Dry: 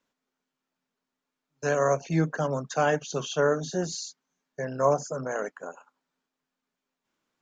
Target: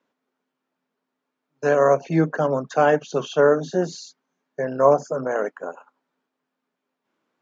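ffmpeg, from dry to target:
-af "highpass=340,aemphasis=mode=reproduction:type=riaa,volume=2"

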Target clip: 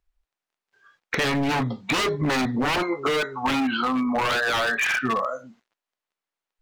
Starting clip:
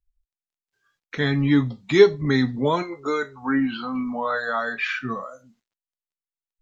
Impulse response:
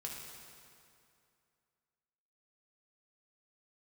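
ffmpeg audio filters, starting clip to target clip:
-filter_complex "[0:a]asplit=2[s0][s1];[s1]highpass=f=720:p=1,volume=7.94,asoftclip=type=tanh:threshold=0.841[s2];[s0][s2]amix=inputs=2:normalize=0,lowpass=f=1200:p=1,volume=0.501,aeval=exprs='0.141*(abs(mod(val(0)/0.141+3,4)-2)-1)':c=same,acompressor=threshold=0.0501:ratio=6,volume=1.78"

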